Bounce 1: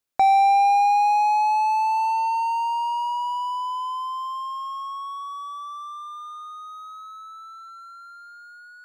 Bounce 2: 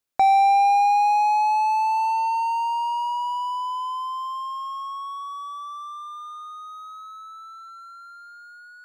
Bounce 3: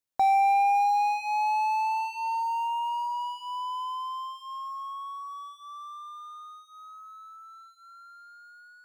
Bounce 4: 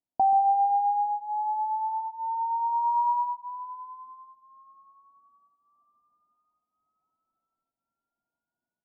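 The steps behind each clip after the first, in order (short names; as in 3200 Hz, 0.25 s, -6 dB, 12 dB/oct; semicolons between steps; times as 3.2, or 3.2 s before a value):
nothing audible
dynamic EQ 2300 Hz, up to +5 dB, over -40 dBFS, Q 0.82; LFO notch sine 0.45 Hz 330–4700 Hz; companded quantiser 8-bit; gain -6 dB
rippled Chebyshev low-pass 990 Hz, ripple 9 dB; echo 0.133 s -13 dB; gain +6.5 dB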